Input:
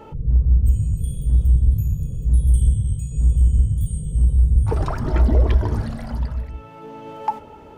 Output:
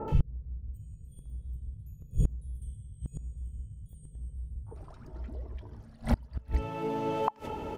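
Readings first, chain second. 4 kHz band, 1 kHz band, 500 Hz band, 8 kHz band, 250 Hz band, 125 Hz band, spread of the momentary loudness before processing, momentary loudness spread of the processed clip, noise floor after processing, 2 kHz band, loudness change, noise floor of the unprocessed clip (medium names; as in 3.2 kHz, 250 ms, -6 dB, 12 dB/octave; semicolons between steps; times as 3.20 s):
no reading, -6.5 dB, -6.0 dB, -18.0 dB, -9.0 dB, -17.5 dB, 11 LU, 15 LU, -52 dBFS, -8.5 dB, -17.0 dB, -41 dBFS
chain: bands offset in time lows, highs 80 ms, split 1.4 kHz; inverted gate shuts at -18 dBFS, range -30 dB; trim +5.5 dB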